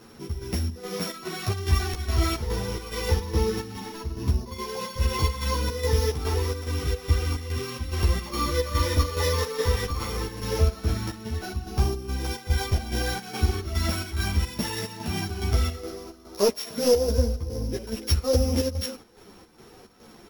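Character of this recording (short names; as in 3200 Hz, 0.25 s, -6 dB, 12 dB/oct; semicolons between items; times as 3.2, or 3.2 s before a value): a buzz of ramps at a fixed pitch in blocks of 8 samples; chopped level 2.4 Hz, depth 60%, duty 65%; a shimmering, thickened sound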